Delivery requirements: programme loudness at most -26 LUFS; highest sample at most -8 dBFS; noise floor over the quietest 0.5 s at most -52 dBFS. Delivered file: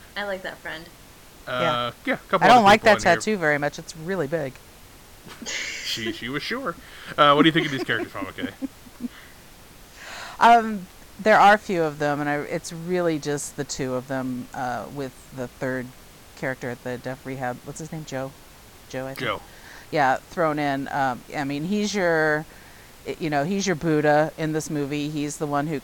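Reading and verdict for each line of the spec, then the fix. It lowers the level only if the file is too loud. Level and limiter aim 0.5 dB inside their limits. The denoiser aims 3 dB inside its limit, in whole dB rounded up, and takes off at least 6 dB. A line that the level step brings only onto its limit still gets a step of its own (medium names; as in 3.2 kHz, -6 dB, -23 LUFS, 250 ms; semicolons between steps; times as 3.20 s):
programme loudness -23.0 LUFS: fail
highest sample -3.0 dBFS: fail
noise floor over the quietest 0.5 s -47 dBFS: fail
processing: noise reduction 6 dB, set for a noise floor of -47 dBFS; trim -3.5 dB; peak limiter -8.5 dBFS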